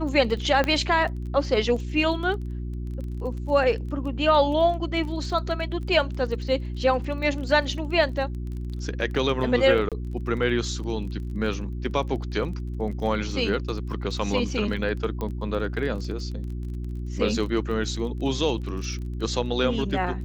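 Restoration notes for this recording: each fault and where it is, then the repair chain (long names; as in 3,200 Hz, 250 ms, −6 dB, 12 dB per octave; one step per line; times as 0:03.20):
surface crackle 24 per second −34 dBFS
mains hum 60 Hz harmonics 6 −31 dBFS
0:00.64: click −11 dBFS
0:09.89–0:09.92: drop-out 27 ms
0:15.21: click −18 dBFS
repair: click removal
hum removal 60 Hz, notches 6
repair the gap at 0:09.89, 27 ms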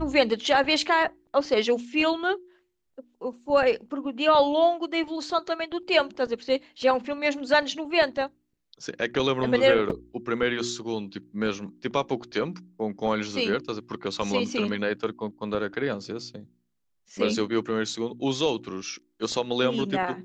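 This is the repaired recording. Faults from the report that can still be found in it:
none of them is left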